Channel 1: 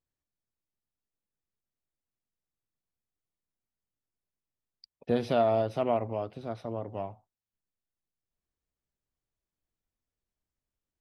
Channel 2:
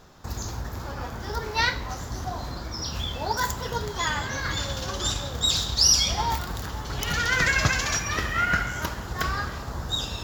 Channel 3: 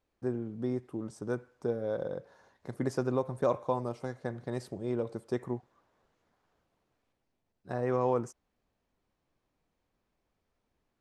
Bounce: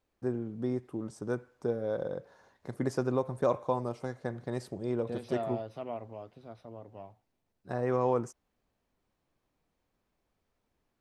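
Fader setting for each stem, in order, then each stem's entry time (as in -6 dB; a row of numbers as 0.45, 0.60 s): -11.0 dB, off, +0.5 dB; 0.00 s, off, 0.00 s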